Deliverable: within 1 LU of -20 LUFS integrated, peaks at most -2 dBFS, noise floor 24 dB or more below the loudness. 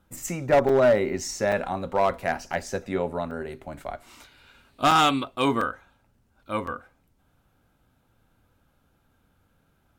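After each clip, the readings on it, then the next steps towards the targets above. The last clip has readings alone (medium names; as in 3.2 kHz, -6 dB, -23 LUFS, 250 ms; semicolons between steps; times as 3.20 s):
clipped samples 0.5%; clipping level -13.5 dBFS; dropouts 8; longest dropout 3.6 ms; loudness -24.5 LUFS; peak level -13.5 dBFS; loudness target -20.0 LUFS
-> clip repair -13.5 dBFS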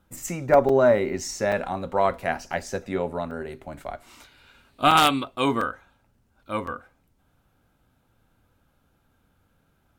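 clipped samples 0.0%; dropouts 8; longest dropout 3.6 ms
-> interpolate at 0.13/0.69/1.52/2.53/3.31/4.91/5.61/6.67 s, 3.6 ms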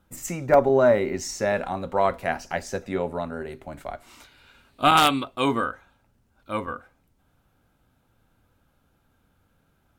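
dropouts 0; loudness -23.5 LUFS; peak level -4.5 dBFS; loudness target -20.0 LUFS
-> trim +3.5 dB; peak limiter -2 dBFS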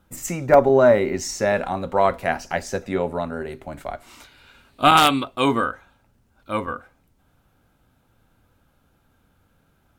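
loudness -20.5 LUFS; peak level -2.0 dBFS; noise floor -64 dBFS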